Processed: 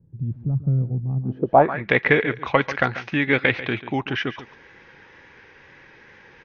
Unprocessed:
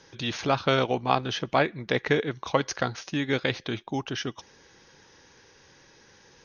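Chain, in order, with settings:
tape wow and flutter 27 cents
single-tap delay 141 ms −14.5 dB
in parallel at −10 dB: gain into a clipping stage and back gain 19 dB
on the sum: low-pass filter sweep 140 Hz → 2,200 Hz, 0:01.19–0:01.81
level +2.5 dB

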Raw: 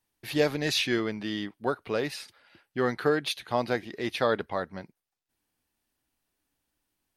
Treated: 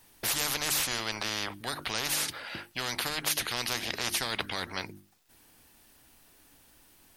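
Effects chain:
high-shelf EQ 9,300 Hz +3 dB
mains-hum notches 50/100/150/200/250/300/350 Hz
every bin compressed towards the loudest bin 10 to 1

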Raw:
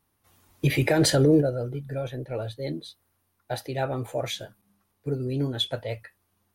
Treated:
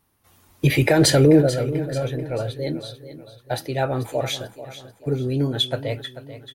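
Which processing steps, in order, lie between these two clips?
repeating echo 439 ms, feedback 44%, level −13.5 dB
level +5 dB

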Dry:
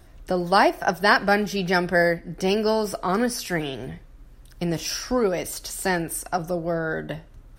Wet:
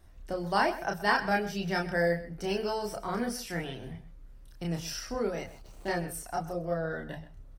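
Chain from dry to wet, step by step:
0:05.44–0:05.88: running median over 25 samples
multi-voice chorus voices 6, 0.31 Hz, delay 30 ms, depth 1.2 ms
slap from a distant wall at 22 metres, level −15 dB
level −6 dB

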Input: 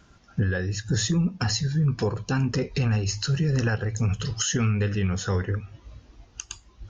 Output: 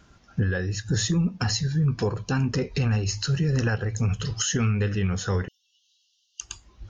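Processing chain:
0:05.48–0:06.41: linear-phase brick-wall high-pass 2,700 Hz

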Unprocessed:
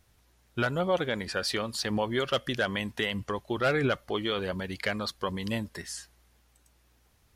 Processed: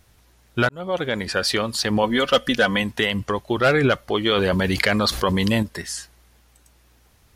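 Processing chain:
0:00.69–0:01.44: fade in equal-power
0:02.03–0:02.83: comb filter 4 ms, depth 63%
0:04.26–0:05.63: envelope flattener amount 70%
level +8.5 dB

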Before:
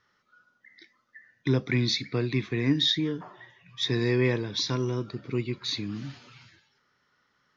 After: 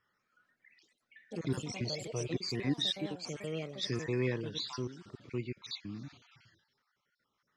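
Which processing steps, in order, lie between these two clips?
time-frequency cells dropped at random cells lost 38%
delay with pitch and tempo change per echo 196 ms, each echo +4 semitones, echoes 3, each echo −6 dB
0:01.84–0:02.31: graphic EQ with 15 bands 250 Hz −12 dB, 630 Hz +5 dB, 1,600 Hz −10 dB
level −8 dB

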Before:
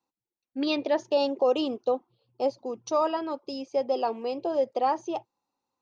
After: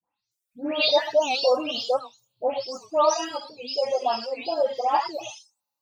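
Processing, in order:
every frequency bin delayed by itself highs late, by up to 314 ms
drawn EQ curve 220 Hz 0 dB, 390 Hz −10 dB, 590 Hz +4 dB, 1,600 Hz +4 dB, 4,700 Hz +11 dB
reverb whose tail is shaped and stops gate 140 ms flat, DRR 0 dB
reverb reduction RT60 1.5 s
wow of a warped record 78 rpm, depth 160 cents

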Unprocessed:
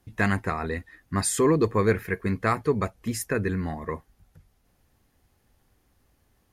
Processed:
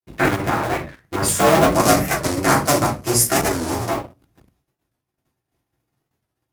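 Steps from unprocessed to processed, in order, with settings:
sub-harmonics by changed cycles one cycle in 2, inverted
0:01.68–0:03.89: flat-topped bell 7,500 Hz +10.5 dB
rectangular room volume 160 cubic metres, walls furnished, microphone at 3.3 metres
dynamic equaliser 3,800 Hz, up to −4 dB, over −36 dBFS, Q 1
leveller curve on the samples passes 2
downward expander −49 dBFS
high-pass filter 110 Hz 12 dB per octave
wow of a warped record 45 rpm, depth 160 cents
level −5.5 dB

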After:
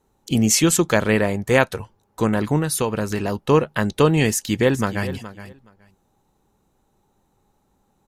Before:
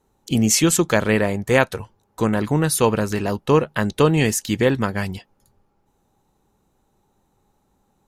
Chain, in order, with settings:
0:02.58–0:03.36: downward compressor, threshold −18 dBFS, peak gain reduction 7 dB
0:04.31–0:05.10: delay throw 420 ms, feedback 15%, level −14 dB

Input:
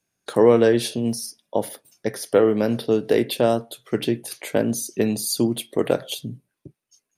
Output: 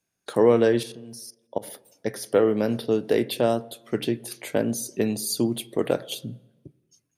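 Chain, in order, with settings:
0:00.83–0:01.68: output level in coarse steps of 19 dB
on a send: low-pass filter 1,300 Hz 6 dB per octave + convolution reverb RT60 1.1 s, pre-delay 81 ms, DRR 25 dB
on the sum: level −3 dB

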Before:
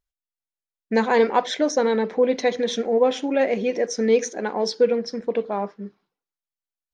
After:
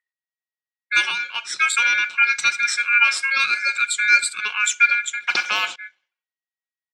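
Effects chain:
ring modulation 1,900 Hz
low-pass that shuts in the quiet parts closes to 2,600 Hz, open at −21.5 dBFS
spectral tilt +4.5 dB per octave
comb filter 5.5 ms, depth 43%
0:01.09–0:01.59: downward compressor 6 to 1, threshold −22 dBFS, peak gain reduction 13 dB
0:02.78–0:03.51: high-shelf EQ 5,200 Hz +5 dB
0:05.27–0:05.76: every bin compressed towards the loudest bin 2 to 1
level −1.5 dB

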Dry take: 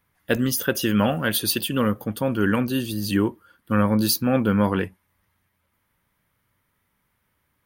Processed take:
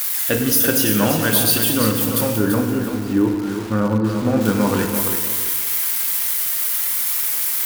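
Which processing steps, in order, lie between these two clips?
spike at every zero crossing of −17 dBFS
0:02.36–0:04.41: low-pass filter 1,200 Hz 12 dB per octave
feedback delay network reverb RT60 1.7 s, low-frequency decay 1.1×, high-frequency decay 0.6×, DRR 3.5 dB
feedback echo at a low word length 337 ms, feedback 35%, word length 5 bits, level −6 dB
level +1 dB

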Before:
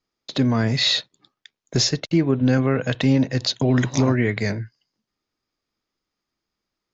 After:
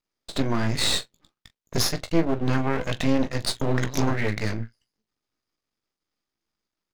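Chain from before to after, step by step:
ambience of single reflections 18 ms −8 dB, 42 ms −16 dB
half-wave rectification

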